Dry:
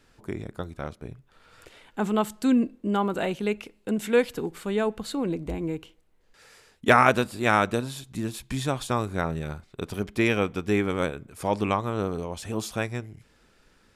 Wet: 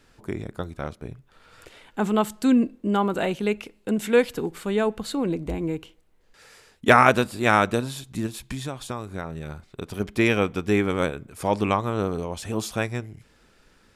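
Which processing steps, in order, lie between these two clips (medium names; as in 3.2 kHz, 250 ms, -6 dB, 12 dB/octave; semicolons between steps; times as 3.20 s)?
8.26–10.00 s: compression 3:1, threshold -33 dBFS, peak gain reduction 10 dB; trim +2.5 dB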